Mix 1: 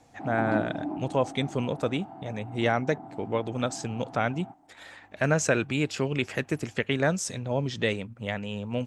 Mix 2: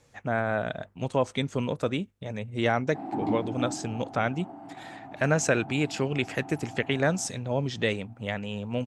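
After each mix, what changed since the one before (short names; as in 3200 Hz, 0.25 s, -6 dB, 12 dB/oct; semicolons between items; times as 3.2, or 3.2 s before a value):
background: entry +2.75 s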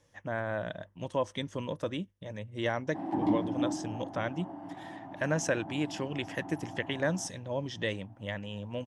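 speech -6.5 dB; master: add ripple EQ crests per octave 1.2, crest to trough 7 dB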